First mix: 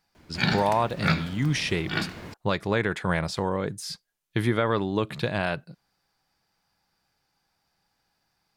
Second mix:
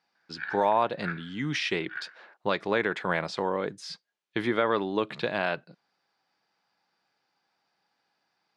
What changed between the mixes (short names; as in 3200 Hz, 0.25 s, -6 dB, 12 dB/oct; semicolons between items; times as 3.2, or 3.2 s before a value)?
background: add band-pass 1600 Hz, Q 9.5; master: add BPF 260–4500 Hz